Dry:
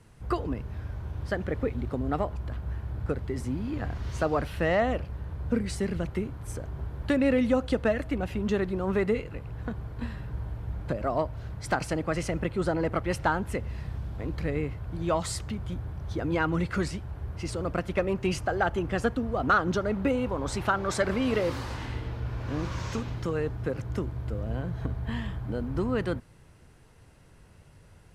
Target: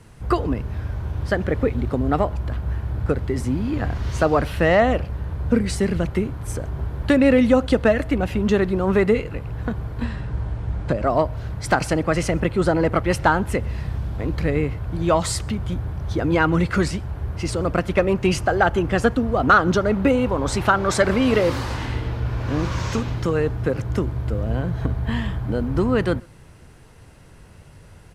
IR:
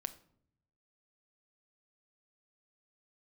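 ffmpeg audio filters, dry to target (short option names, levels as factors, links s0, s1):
-filter_complex "[0:a]asettb=1/sr,asplit=3[s0][s1][s2];[s0]atrim=end=10.034[s3];[s1]atrim=start=10.03:end=11.09,asetpts=PTS-STARTPTS,afade=t=in:d=0.004:c=qsin,afade=t=out:st=1.056:d=0.004:c=qsin,lowpass=f=9800:w=0.5412,lowpass=f=9800:w=1.3066[s4];[s2]atrim=start=11.086[s5];[s3][s4]acrossfade=d=0.004:c1=hsin:c2=qsin[s6];[s6][s5]acrossfade=d=0.004:c1=qsin:c2=hsin,asplit=2[s7][s8];[s8]adelay=128.3,volume=0.0355,highshelf=f=4000:g=-2.89[s9];[s7][s9]amix=inputs=2:normalize=0,volume=2.66"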